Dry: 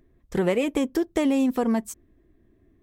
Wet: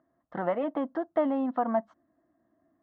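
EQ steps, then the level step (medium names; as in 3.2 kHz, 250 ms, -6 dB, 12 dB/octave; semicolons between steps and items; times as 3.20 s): distance through air 100 m; cabinet simulation 300–2600 Hz, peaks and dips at 300 Hz +4 dB, 430 Hz +6 dB, 660 Hz +9 dB, 1.3 kHz +3 dB, 2.3 kHz +6 dB; static phaser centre 1 kHz, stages 4; 0.0 dB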